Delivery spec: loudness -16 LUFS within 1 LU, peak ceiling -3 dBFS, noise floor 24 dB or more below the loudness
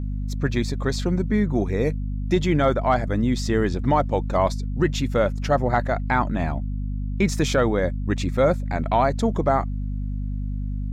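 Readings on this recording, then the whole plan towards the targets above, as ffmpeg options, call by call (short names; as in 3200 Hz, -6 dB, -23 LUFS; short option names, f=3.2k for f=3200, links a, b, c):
hum 50 Hz; harmonics up to 250 Hz; hum level -24 dBFS; loudness -23.5 LUFS; peak -8.5 dBFS; loudness target -16.0 LUFS
-> -af "bandreject=f=50:t=h:w=4,bandreject=f=100:t=h:w=4,bandreject=f=150:t=h:w=4,bandreject=f=200:t=h:w=4,bandreject=f=250:t=h:w=4"
-af "volume=7.5dB,alimiter=limit=-3dB:level=0:latency=1"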